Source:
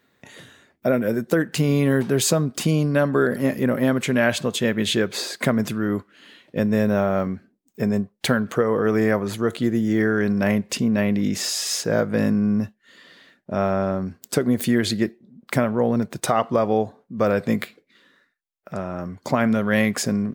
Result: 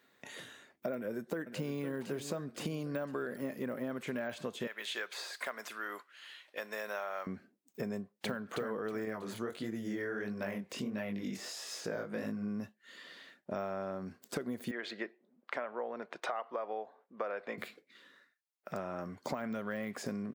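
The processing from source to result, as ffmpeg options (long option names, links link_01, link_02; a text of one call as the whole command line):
ffmpeg -i in.wav -filter_complex "[0:a]asplit=2[link_01][link_02];[link_02]afade=type=in:start_time=0.95:duration=0.01,afade=type=out:start_time=1.8:duration=0.01,aecho=0:1:510|1020|1530|2040|2550:0.251189|0.125594|0.0627972|0.0313986|0.0156993[link_03];[link_01][link_03]amix=inputs=2:normalize=0,asettb=1/sr,asplit=3[link_04][link_05][link_06];[link_04]atrim=end=4.674[link_07];[link_05]atrim=start=4.67:end=7.27,asetpts=PTS-STARTPTS,afade=type=in:duration=0.004:curve=qsin,afade=type=out:start_time=2.596:duration=0.004:curve=qsin,highpass=920[link_08];[link_06]atrim=start=7.266[link_09];[link_07][link_08]acrossfade=duration=0.004:curve1=hsin:curve2=qsin[link_10];[link_10][link_09]acrossfade=duration=0.004:curve1=qsin:curve2=hsin,asplit=2[link_11][link_12];[link_12]afade=type=in:start_time=7.93:duration=0.01,afade=type=out:start_time=8.45:duration=0.01,aecho=0:1:320|640|960|1280:0.595662|0.178699|0.0536096|0.0160829[link_13];[link_11][link_13]amix=inputs=2:normalize=0,asettb=1/sr,asplit=3[link_14][link_15][link_16];[link_14]atrim=end=9.054[link_17];[link_15]atrim=start=9.05:end=12.48,asetpts=PTS-STARTPTS,afade=type=in:duration=0.004:curve=qsin,afade=type=out:start_time=3.426:duration=0.004:curve=qsin,flanger=delay=18:depth=7.8:speed=1.5[link_18];[link_16]atrim=start=12.476[link_19];[link_17][link_18]acrossfade=duration=0.004:curve1=hsin:curve2=qsin[link_20];[link_20][link_19]acrossfade=duration=0.004:curve1=qsin:curve2=hsin,asettb=1/sr,asplit=3[link_21][link_22][link_23];[link_21]atrim=end=14.714[link_24];[link_22]atrim=start=14.71:end=17.58,asetpts=PTS-STARTPTS,afade=type=in:duration=0.004:curve=qsin,afade=type=out:start_time=2.866:duration=0.004:curve=qsin,highpass=530,lowpass=2500[link_25];[link_23]atrim=start=17.576[link_26];[link_24][link_25]acrossfade=duration=0.004:curve1=hsin:curve2=qsin[link_27];[link_27][link_26]acrossfade=duration=0.004:curve1=qsin:curve2=hsin,deesser=0.9,highpass=frequency=350:poles=1,acompressor=threshold=-32dB:ratio=6,volume=-3dB" out.wav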